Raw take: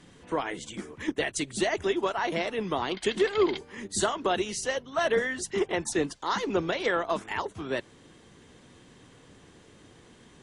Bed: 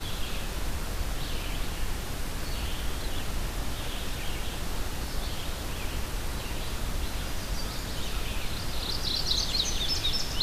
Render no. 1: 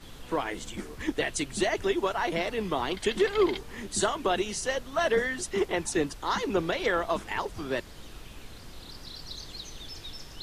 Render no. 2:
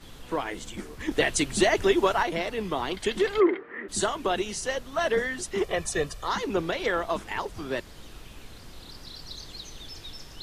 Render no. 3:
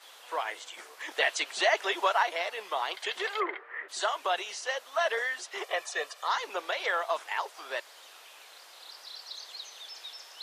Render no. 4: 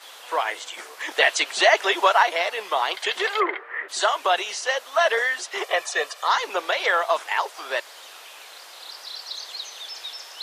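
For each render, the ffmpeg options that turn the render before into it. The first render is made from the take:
-filter_complex "[1:a]volume=-14dB[a];[0:a][a]amix=inputs=2:normalize=0"
-filter_complex "[0:a]asettb=1/sr,asplit=3[a][b][c];[a]atrim=end=1.114[d];[b]atrim=start=1.11:end=2.23,asetpts=PTS-STARTPTS,afade=t=in:d=0.004:c=qsin,afade=t=out:st=1.116:d=0.004:c=qsin,acontrast=38[e];[c]atrim=start=2.226[f];[d][e]acrossfade=d=0.004:c1=hsin:c2=qsin[g];[g][f]acrossfade=d=0.004:c1=qsin:c2=hsin,asplit=3[h][i][j];[h]afade=t=out:st=3.39:d=0.02[k];[i]highpass=320,equalizer=f=330:t=q:w=4:g=9,equalizer=f=490:t=q:w=4:g=4,equalizer=f=860:t=q:w=4:g=-6,equalizer=f=1.3k:t=q:w=4:g=7,equalizer=f=1.9k:t=q:w=4:g=9,lowpass=f=2.1k:w=0.5412,lowpass=f=2.1k:w=1.3066,afade=t=in:st=3.39:d=0.02,afade=t=out:st=3.88:d=0.02[l];[j]afade=t=in:st=3.88:d=0.02[m];[k][l][m]amix=inputs=3:normalize=0,asettb=1/sr,asplit=3[n][o][p];[n]atrim=end=5.634[q];[o]atrim=start=5.63:end=6.28,asetpts=PTS-STARTPTS,afade=t=in:d=0.004:c=qsin,afade=t=out:st=0.646:d=0.004:c=qsin,aecho=1:1:1.7:0.65,atrim=end_sample=28665[r];[p]atrim=start=6.276[s];[q][r]acrossfade=d=0.004:c1=hsin:c2=qsin[t];[t][s]acrossfade=d=0.004:c1=qsin:c2=hsin"
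-filter_complex "[0:a]highpass=f=600:w=0.5412,highpass=f=600:w=1.3066,acrossover=split=5900[a][b];[b]acompressor=threshold=-53dB:ratio=4:attack=1:release=60[c];[a][c]amix=inputs=2:normalize=0"
-af "volume=8.5dB"

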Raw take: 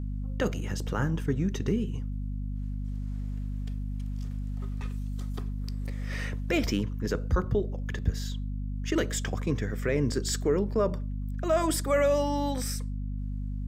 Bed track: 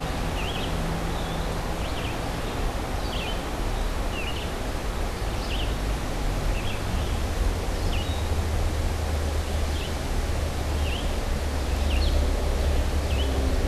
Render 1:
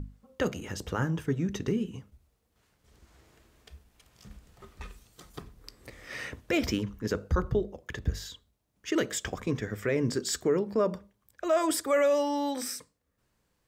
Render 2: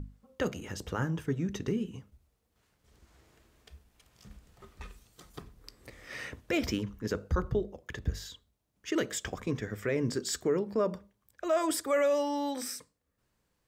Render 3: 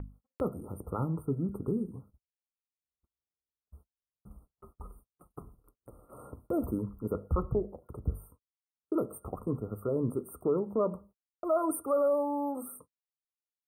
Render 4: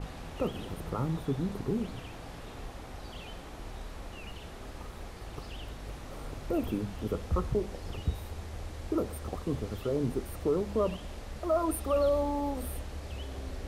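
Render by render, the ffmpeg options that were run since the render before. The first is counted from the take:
-af "bandreject=f=50:t=h:w=6,bandreject=f=100:t=h:w=6,bandreject=f=150:t=h:w=6,bandreject=f=200:t=h:w=6,bandreject=f=250:t=h:w=6"
-af "volume=-2.5dB"
-af "afftfilt=real='re*(1-between(b*sr/4096,1400,8500))':imag='im*(1-between(b*sr/4096,1400,8500))':win_size=4096:overlap=0.75,agate=range=-43dB:threshold=-54dB:ratio=16:detection=peak"
-filter_complex "[1:a]volume=-15dB[a];[0:a][a]amix=inputs=2:normalize=0"

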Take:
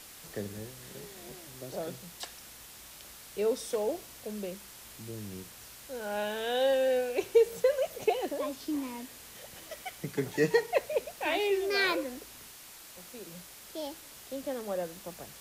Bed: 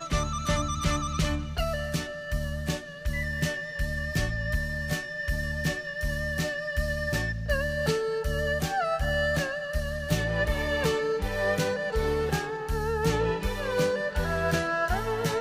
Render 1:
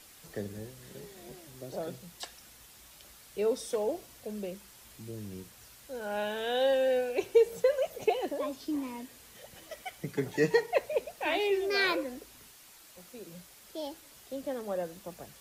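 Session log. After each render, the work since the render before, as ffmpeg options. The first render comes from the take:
-af "afftdn=nr=6:nf=-50"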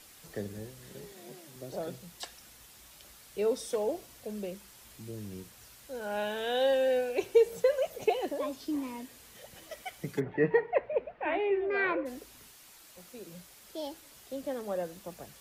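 -filter_complex "[0:a]asettb=1/sr,asplit=3[a][b][c];[a]atrim=end=1.124[d];[b]atrim=start=1.12:end=1.56,asetpts=PTS-STARTPTS,afade=t=in:d=0.004:c=qsin,afade=t=out:st=0.436:d=0.004:c=qsin,highpass=f=130:w=0.5412,highpass=f=130:w=1.3066[e];[c]atrim=start=1.556[f];[d][e]acrossfade=d=0.004:c1=hsin:c2=qsin[g];[g][f]acrossfade=d=0.004:c1=qsin:c2=hsin,asplit=3[h][i][j];[h]afade=t=out:st=10.19:d=0.02[k];[i]lowpass=f=2.2k:w=0.5412,lowpass=f=2.2k:w=1.3066,afade=t=in:st=10.19:d=0.02,afade=t=out:st=12.05:d=0.02[l];[j]afade=t=in:st=12.05:d=0.02[m];[k][l][m]amix=inputs=3:normalize=0"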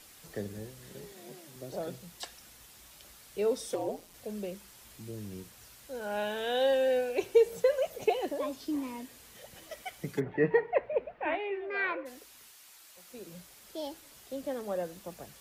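-filter_complex "[0:a]asettb=1/sr,asplit=3[a][b][c];[a]atrim=end=3.744[d];[b]atrim=start=3.74:end=4.14,asetpts=PTS-STARTPTS,afade=t=in:d=0.004:c=qsin,afade=t=out:st=0.396:d=0.004:c=qsin,aeval=exprs='val(0)*sin(2*PI*87*n/s)':c=same[e];[c]atrim=start=4.136[f];[d][e]acrossfade=d=0.004:c1=hsin:c2=qsin[g];[g][f]acrossfade=d=0.004:c1=qsin:c2=hsin,asettb=1/sr,asplit=3[h][i][j];[h]atrim=end=11.354[k];[i]atrim=start=11.35:end=13.1,asetpts=PTS-STARTPTS,afade=t=in:d=0.004:c=qsin,afade=t=out:st=1.746:d=0.004:c=qsin,lowshelf=f=480:g=-12[l];[j]atrim=start=13.096[m];[k][l]acrossfade=d=0.004:c1=hsin:c2=qsin[n];[n][m]acrossfade=d=0.004:c1=qsin:c2=hsin"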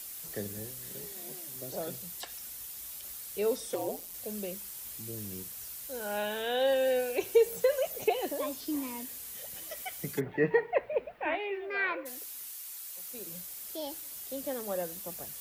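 -filter_complex "[0:a]acrossover=split=3100[a][b];[b]acompressor=threshold=-52dB:ratio=4:attack=1:release=60[c];[a][c]amix=inputs=2:normalize=0,aemphasis=mode=production:type=75fm"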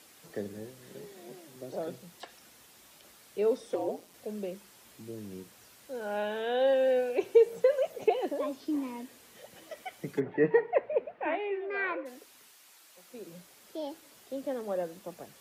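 -af "highpass=300,aemphasis=mode=reproduction:type=riaa"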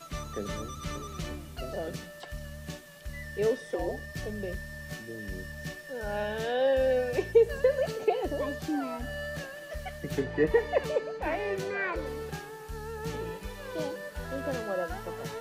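-filter_complex "[1:a]volume=-10.5dB[a];[0:a][a]amix=inputs=2:normalize=0"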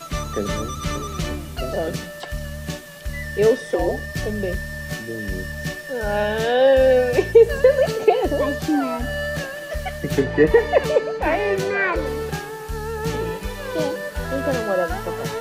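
-af "volume=11dB,alimiter=limit=-3dB:level=0:latency=1"

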